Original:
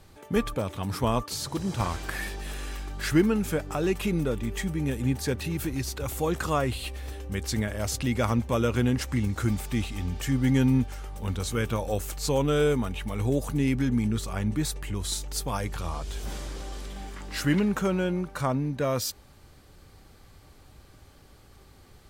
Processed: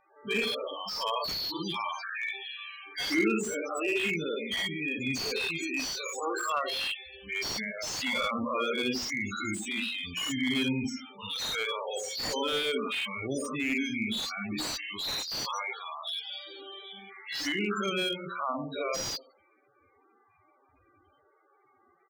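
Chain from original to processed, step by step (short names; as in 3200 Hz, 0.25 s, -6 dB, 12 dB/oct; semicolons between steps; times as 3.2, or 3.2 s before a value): spectral dilation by 0.12 s; low-pass opened by the level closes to 1800 Hz, open at -17 dBFS; weighting filter ITU-R 468; band-limited delay 87 ms, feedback 35%, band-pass 430 Hz, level -4 dB; loudest bins only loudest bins 16; band shelf 1200 Hz -9 dB; notches 60/120/180/240/300/360/420/480/540 Hz; comb 0.9 ms, depth 46%; slew limiter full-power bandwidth 88 Hz; gain +1 dB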